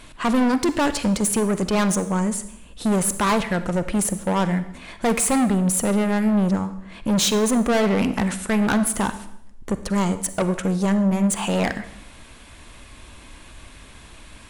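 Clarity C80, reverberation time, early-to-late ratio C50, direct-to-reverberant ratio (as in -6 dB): 15.5 dB, 0.75 s, 12.5 dB, 11.5 dB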